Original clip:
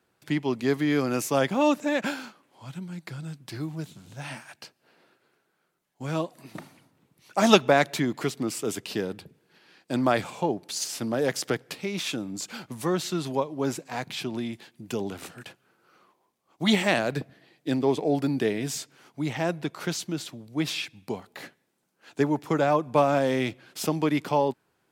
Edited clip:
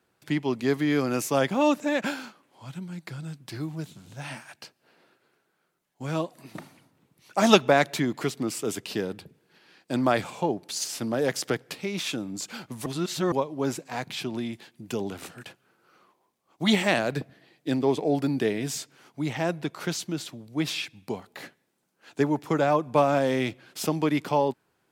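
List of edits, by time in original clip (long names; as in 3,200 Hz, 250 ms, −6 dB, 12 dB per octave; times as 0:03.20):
0:12.86–0:13.32: reverse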